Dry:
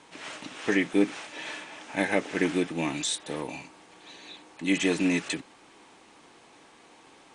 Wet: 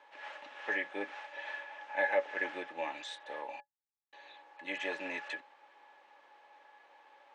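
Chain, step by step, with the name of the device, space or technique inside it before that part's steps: 3.6–4.13 inverse Chebyshev band-stop 230–6300 Hz, stop band 50 dB; tin-can telephone (BPF 670–2900 Hz; small resonant body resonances 570/840/1700 Hz, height 16 dB, ringing for 95 ms); gain -7.5 dB

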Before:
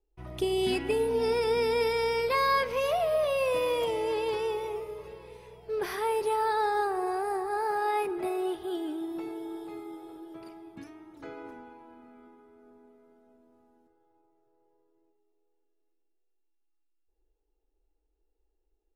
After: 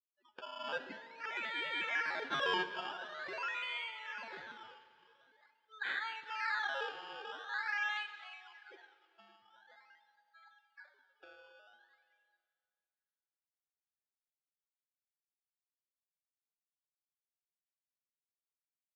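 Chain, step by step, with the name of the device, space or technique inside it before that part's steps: spectral gate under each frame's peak -30 dB strong; HPF 1200 Hz 24 dB/oct; spectral noise reduction 29 dB; circuit-bent sampling toy (decimation with a swept rate 15×, swing 100% 0.46 Hz; speaker cabinet 460–4000 Hz, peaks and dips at 690 Hz -6 dB, 1100 Hz -10 dB, 1600 Hz +9 dB); Schroeder reverb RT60 2.2 s, combs from 33 ms, DRR 12 dB

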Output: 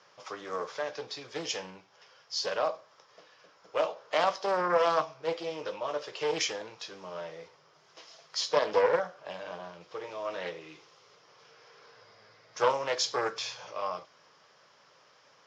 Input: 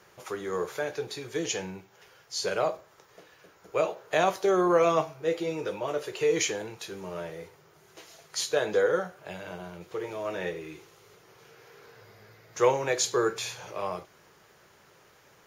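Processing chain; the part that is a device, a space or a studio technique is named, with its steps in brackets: 8.41–9.72 bell 490 Hz +3.5 dB 2.4 oct; full-range speaker at full volume (Doppler distortion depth 0.41 ms; speaker cabinet 180–6100 Hz, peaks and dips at 200 Hz -4 dB, 370 Hz -9 dB, 560 Hz +4 dB, 1100 Hz +6 dB, 3200 Hz +4 dB, 5200 Hz +10 dB); gain -4 dB

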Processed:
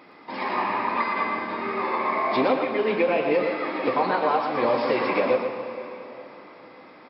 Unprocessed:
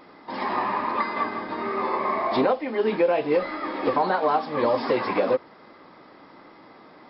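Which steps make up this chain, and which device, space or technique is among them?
PA in a hall (HPF 100 Hz; bell 2400 Hz +7.5 dB 0.42 oct; echo 0.117 s -6 dB; reverb RT60 3.8 s, pre-delay 57 ms, DRR 7.5 dB); gain -1.5 dB

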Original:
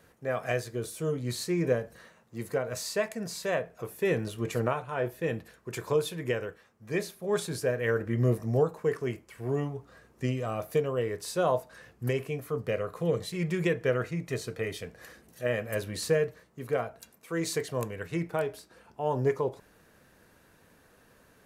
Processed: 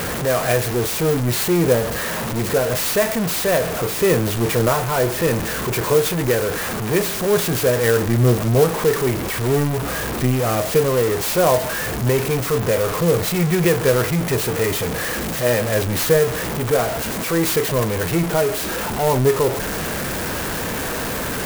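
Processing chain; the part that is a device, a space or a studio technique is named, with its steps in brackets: early CD player with a faulty converter (zero-crossing step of -26.5 dBFS; clock jitter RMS 0.056 ms); gain +8 dB

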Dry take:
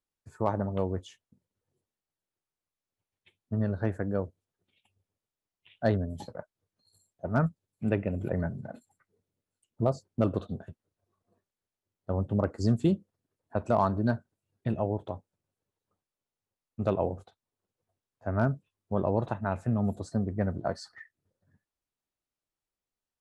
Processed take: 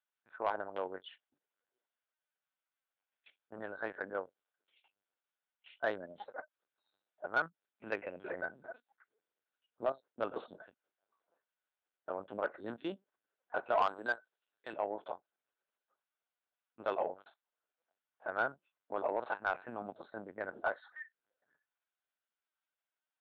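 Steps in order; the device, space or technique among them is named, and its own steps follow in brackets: talking toy (LPC vocoder at 8 kHz pitch kept; HPF 660 Hz 12 dB/oct; bell 1500 Hz +8.5 dB 0.24 oct; soft clip -20.5 dBFS, distortion -17 dB); 13.86–14.73 tone controls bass -8 dB, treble +15 dB

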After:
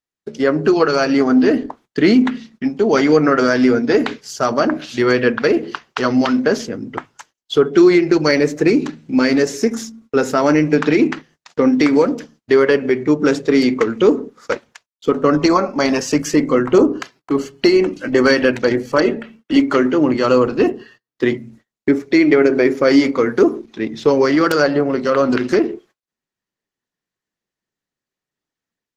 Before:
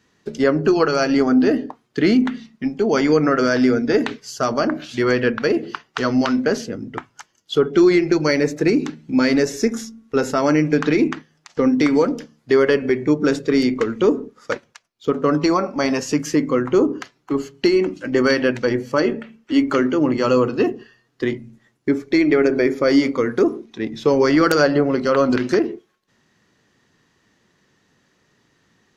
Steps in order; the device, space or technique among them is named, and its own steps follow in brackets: video call (HPF 140 Hz 6 dB/oct; AGC gain up to 7.5 dB; gate -44 dBFS, range -32 dB; Opus 16 kbps 48000 Hz)

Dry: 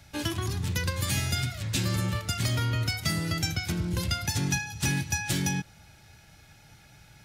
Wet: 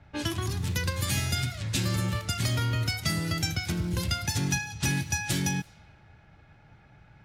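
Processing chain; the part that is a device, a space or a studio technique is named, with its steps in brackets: cassette deck with a dynamic noise filter (white noise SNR 31 dB; low-pass opened by the level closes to 1500 Hz, open at -26.5 dBFS)

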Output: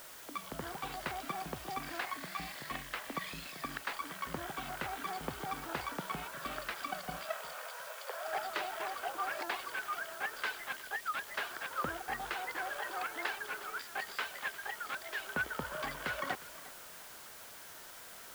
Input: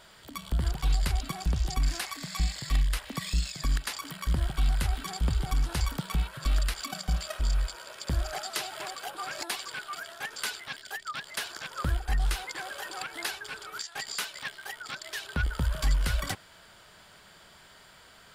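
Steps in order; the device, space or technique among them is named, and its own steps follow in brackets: wax cylinder (BPF 340–2100 Hz; wow and flutter; white noise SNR 11 dB); 7.25–8.28 steep high-pass 430 Hz 72 dB/oct; warbling echo 0.357 s, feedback 33%, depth 73 cents, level -18 dB; gain +1 dB

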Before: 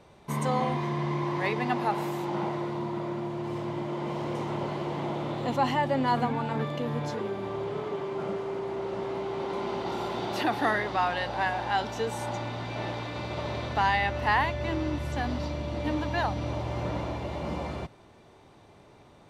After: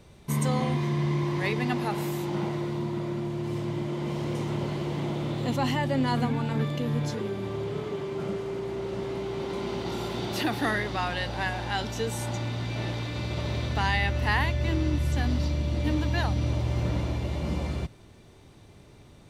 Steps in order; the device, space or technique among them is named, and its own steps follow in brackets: smiley-face EQ (low shelf 120 Hz +9 dB; bell 850 Hz -7.5 dB 1.6 oct; high shelf 6500 Hz +7.5 dB); gain +2 dB

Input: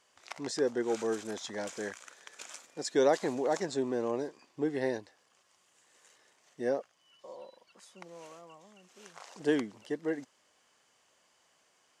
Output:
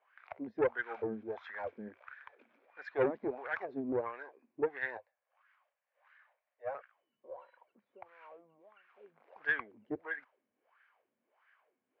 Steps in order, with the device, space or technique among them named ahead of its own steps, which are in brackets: 4.97–6.75 elliptic high-pass 560 Hz, stop band 40 dB; wah-wah guitar rig (wah 1.5 Hz 210–1600 Hz, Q 4.9; tube stage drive 30 dB, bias 0.5; speaker cabinet 81–3700 Hz, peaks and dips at 97 Hz +6 dB, 180 Hz -10 dB, 310 Hz -5 dB, 1600 Hz +5 dB, 2300 Hz +10 dB); gain +8 dB

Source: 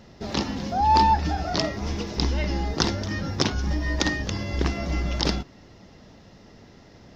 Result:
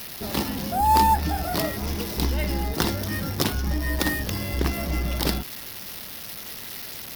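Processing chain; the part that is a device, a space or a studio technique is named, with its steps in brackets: budget class-D amplifier (switching dead time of 0.067 ms; switching spikes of -20 dBFS)

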